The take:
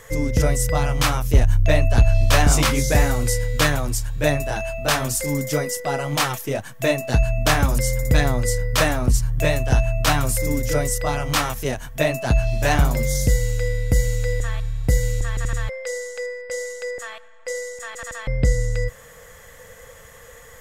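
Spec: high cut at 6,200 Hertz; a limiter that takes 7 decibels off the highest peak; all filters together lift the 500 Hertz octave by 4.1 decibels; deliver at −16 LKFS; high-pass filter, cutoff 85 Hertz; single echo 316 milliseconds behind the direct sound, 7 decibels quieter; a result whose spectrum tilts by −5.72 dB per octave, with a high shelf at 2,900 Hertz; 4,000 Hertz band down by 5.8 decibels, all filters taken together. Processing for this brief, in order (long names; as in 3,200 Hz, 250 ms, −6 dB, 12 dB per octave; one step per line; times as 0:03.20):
high-pass filter 85 Hz
low-pass filter 6,200 Hz
parametric band 500 Hz +5 dB
high-shelf EQ 2,900 Hz −3.5 dB
parametric band 4,000 Hz −4 dB
brickwall limiter −11 dBFS
single-tap delay 316 ms −7 dB
level +7 dB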